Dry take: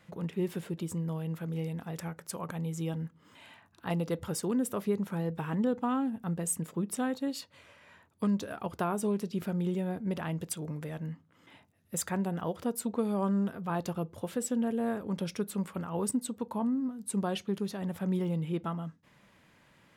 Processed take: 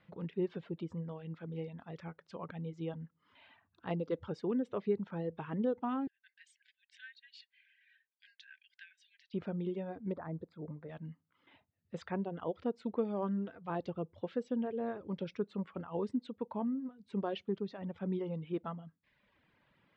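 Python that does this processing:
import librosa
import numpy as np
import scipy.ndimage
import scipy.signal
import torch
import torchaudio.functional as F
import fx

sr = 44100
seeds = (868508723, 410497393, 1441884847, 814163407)

y = fx.brickwall_highpass(x, sr, low_hz=1500.0, at=(6.07, 9.34))
y = fx.moving_average(y, sr, points=15, at=(10.11, 10.88), fade=0.02)
y = scipy.signal.sosfilt(scipy.signal.cheby2(4, 60, 11000.0, 'lowpass', fs=sr, output='sos'), y)
y = fx.dereverb_blind(y, sr, rt60_s=0.91)
y = fx.dynamic_eq(y, sr, hz=430.0, q=0.95, threshold_db=-44.0, ratio=4.0, max_db=6)
y = y * 10.0 ** (-6.5 / 20.0)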